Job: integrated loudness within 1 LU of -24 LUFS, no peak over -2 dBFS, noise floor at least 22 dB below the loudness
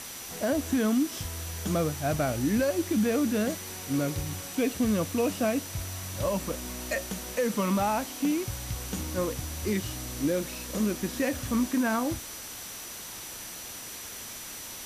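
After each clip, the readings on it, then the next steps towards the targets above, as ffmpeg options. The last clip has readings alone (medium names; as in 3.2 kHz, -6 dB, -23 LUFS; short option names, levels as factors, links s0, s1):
steady tone 5.9 kHz; tone level -46 dBFS; noise floor -41 dBFS; noise floor target -52 dBFS; loudness -30.0 LUFS; peak level -17.0 dBFS; loudness target -24.0 LUFS
-> -af "bandreject=f=5900:w=30"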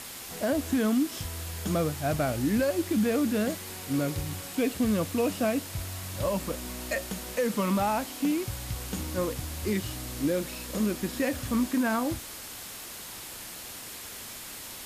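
steady tone not found; noise floor -42 dBFS; noise floor target -52 dBFS
-> -af "afftdn=nr=10:nf=-42"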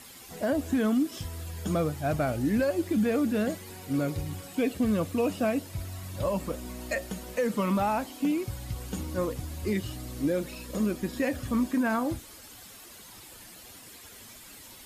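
noise floor -49 dBFS; noise floor target -52 dBFS
-> -af "afftdn=nr=6:nf=-49"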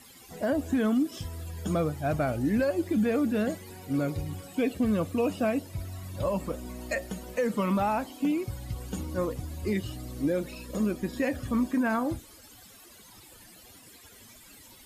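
noise floor -53 dBFS; loudness -30.0 LUFS; peak level -18.0 dBFS; loudness target -24.0 LUFS
-> -af "volume=2"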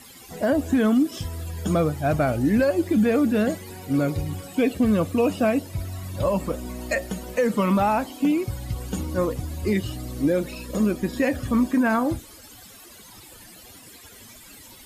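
loudness -24.0 LUFS; peak level -12.0 dBFS; noise floor -47 dBFS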